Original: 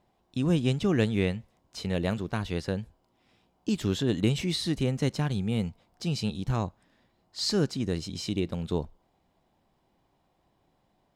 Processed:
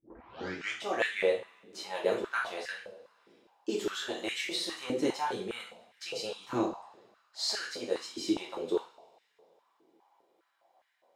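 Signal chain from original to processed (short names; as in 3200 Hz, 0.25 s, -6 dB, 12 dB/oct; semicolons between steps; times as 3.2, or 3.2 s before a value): tape start at the beginning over 0.83 s; two-slope reverb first 0.44 s, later 2.5 s, from -26 dB, DRR -4.5 dB; stepped high-pass 4.9 Hz 320–1800 Hz; gain -8 dB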